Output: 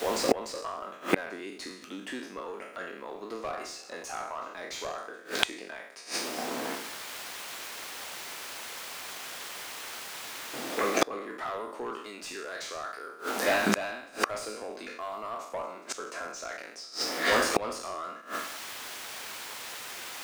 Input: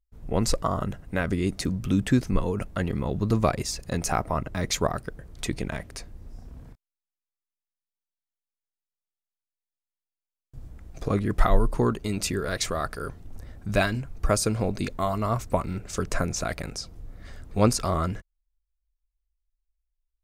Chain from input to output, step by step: spectral sustain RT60 0.61 s; high-pass 260 Hz 24 dB/octave; treble shelf 2.1 kHz +3 dB; in parallel at -5.5 dB: word length cut 8-bit, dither triangular; on the sum: overdrive pedal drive 21 dB, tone 2.4 kHz, clips at -0.5 dBFS; pre-echo 297 ms -22 dB; inverted gate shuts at -14 dBFS, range -30 dB; trim +6 dB

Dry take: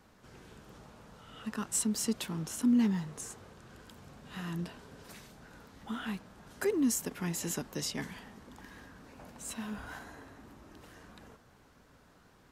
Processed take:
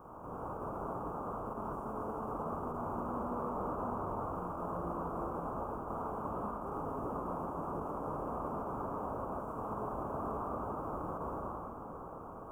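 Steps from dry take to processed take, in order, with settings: spectral contrast reduction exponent 0.16; reverberation RT60 2.9 s, pre-delay 29 ms, DRR -6.5 dB; reverse; compression 6:1, threshold -38 dBFS, peak gain reduction 19.5 dB; reverse; peak limiter -37 dBFS, peak gain reduction 14 dB; elliptic low-pass 1.2 kHz, stop band 40 dB; tape noise reduction on one side only encoder only; trim +16.5 dB

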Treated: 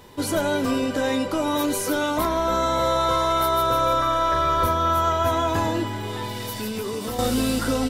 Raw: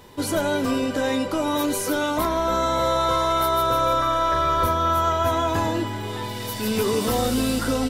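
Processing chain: 6.39–7.19 s: compression 6:1, threshold -26 dBFS, peak gain reduction 8 dB

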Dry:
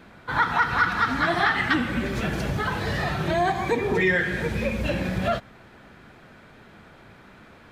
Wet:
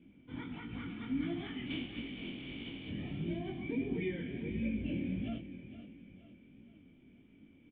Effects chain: 1.65–2.88 s: spectral contrast reduction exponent 0.2; on a send: feedback delay 468 ms, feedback 44%, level -11.5 dB; on the sum: chorus 1.5 Hz, delay 17.5 ms, depth 6.8 ms; cascade formant filter i; trim +1.5 dB

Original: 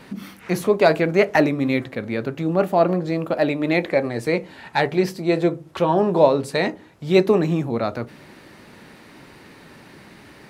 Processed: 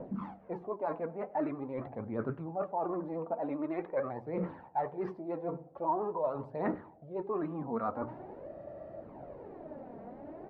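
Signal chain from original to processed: hum notches 60/120/180 Hz; reverse; compression 10:1, threshold -31 dBFS, peak gain reduction 22 dB; reverse; vibrato 13 Hz 57 cents; phaser 0.45 Hz, delay 4.5 ms, feedback 53%; on a send: feedback delay 98 ms, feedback 43%, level -21 dB; on the sum: spectral freeze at 8.51 s, 0.51 s; touch-sensitive low-pass 550–1300 Hz up, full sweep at -26 dBFS; trim -5 dB

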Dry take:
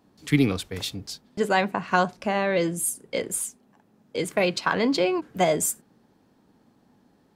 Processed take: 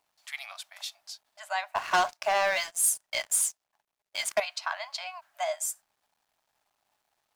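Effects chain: brick-wall FIR high-pass 580 Hz; bit crusher 11-bit; 1.75–4.40 s: waveshaping leveller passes 3; dynamic bell 5.7 kHz, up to +5 dB, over -39 dBFS, Q 1.7; trim -8 dB

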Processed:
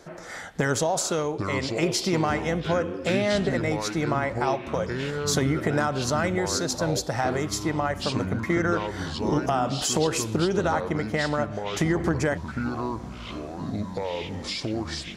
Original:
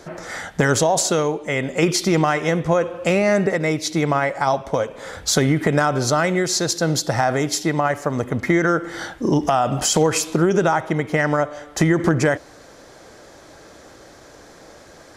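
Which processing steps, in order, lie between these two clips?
ever faster or slower copies 554 ms, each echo -6 st, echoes 3, each echo -6 dB; trim -7 dB

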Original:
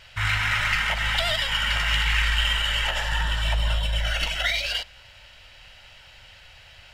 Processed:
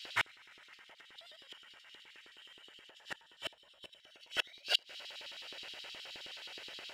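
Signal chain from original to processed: inverted gate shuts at -16 dBFS, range -33 dB; LFO high-pass square 9.5 Hz 380–3700 Hz

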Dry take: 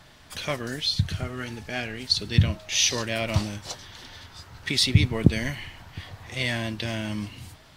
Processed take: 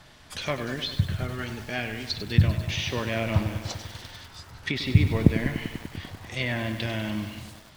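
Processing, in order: low-pass that closes with the level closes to 2.1 kHz, closed at -23 dBFS; short-mantissa float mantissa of 6-bit; bit-crushed delay 98 ms, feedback 80%, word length 7-bit, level -10 dB

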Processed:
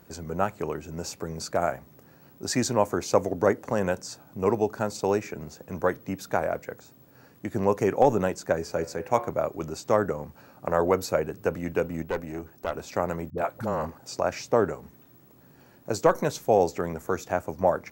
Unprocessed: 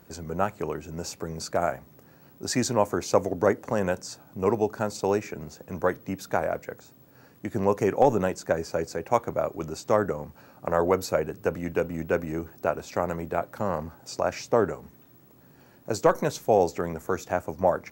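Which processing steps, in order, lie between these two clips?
8.59–9.28 s: de-hum 71.48 Hz, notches 39; 12.02–12.74 s: valve stage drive 20 dB, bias 0.7; 13.30–13.98 s: phase dispersion highs, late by 72 ms, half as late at 360 Hz

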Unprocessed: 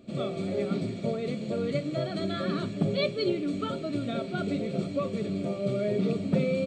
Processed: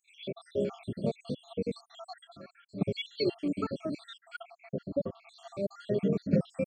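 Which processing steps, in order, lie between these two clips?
random holes in the spectrogram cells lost 73%; 2.10–2.90 s: dip -15 dB, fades 0.28 s; 4.43–5.27 s: low-pass 1.9 kHz 12 dB/octave

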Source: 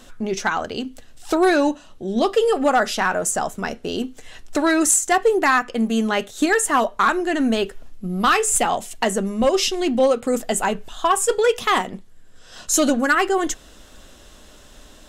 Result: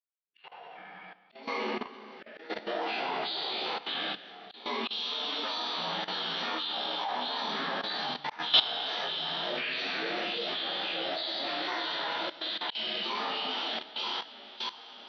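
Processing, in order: frequency axis rescaled in octaves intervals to 76%; level rider gain up to 11 dB; differentiator; echo whose repeats swap between lows and highs 310 ms, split 2.2 kHz, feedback 85%, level -5 dB; gate -37 dBFS, range -56 dB; wow and flutter 110 cents; plate-style reverb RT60 1.5 s, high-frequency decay 1×, DRR -7 dB; formant-preserving pitch shift -4 st; slow attack 206 ms; level held to a coarse grid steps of 15 dB; distance through air 100 m; trim -2 dB

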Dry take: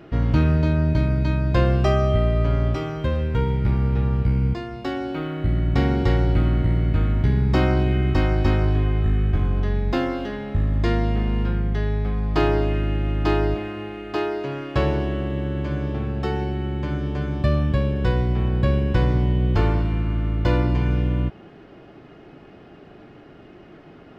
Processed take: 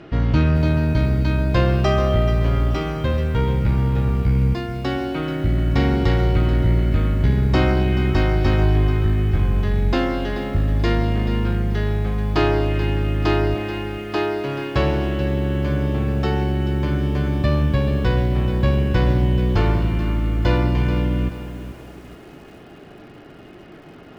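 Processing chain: treble shelf 2.8 kHz +7.5 dB; in parallel at -8 dB: overload inside the chain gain 22 dB; on the sum: distance through air 75 m; bit-crushed delay 433 ms, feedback 35%, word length 7-bit, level -11.5 dB

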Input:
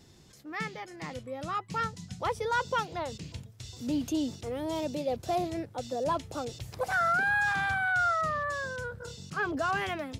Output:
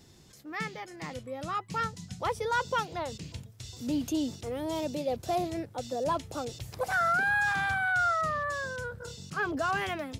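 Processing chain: treble shelf 9.1 kHz +4.5 dB

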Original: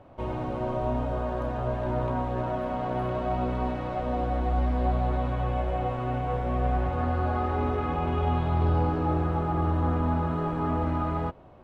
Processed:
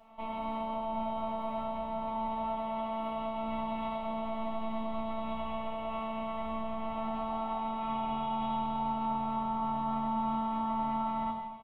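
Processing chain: tone controls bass -9 dB, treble -4 dB; comb 5.1 ms, depth 58%; peak limiter -25.5 dBFS, peak gain reduction 8.5 dB; static phaser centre 1.6 kHz, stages 6; robot voice 223 Hz; gated-style reverb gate 360 ms falling, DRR -4 dB

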